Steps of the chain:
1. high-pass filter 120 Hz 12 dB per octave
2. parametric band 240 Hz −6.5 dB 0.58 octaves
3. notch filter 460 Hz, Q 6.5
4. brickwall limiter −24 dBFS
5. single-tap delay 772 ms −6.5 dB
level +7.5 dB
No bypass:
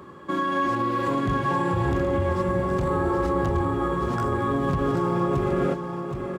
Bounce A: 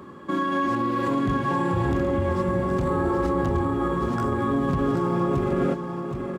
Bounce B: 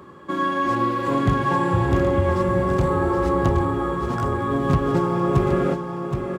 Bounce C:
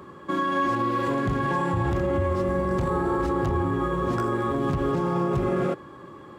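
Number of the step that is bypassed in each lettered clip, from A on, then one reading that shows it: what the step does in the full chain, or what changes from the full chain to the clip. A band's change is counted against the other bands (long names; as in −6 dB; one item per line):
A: 2, 250 Hz band +3.0 dB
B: 4, average gain reduction 2.5 dB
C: 5, change in crest factor −2.5 dB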